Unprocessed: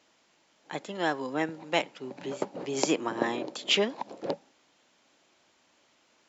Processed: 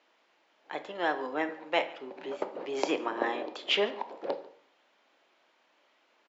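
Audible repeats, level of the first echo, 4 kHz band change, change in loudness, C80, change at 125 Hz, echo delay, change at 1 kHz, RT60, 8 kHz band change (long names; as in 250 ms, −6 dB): 1, −21.5 dB, −3.0 dB, −1.5 dB, 15.5 dB, below −10 dB, 144 ms, +0.5 dB, 0.60 s, can't be measured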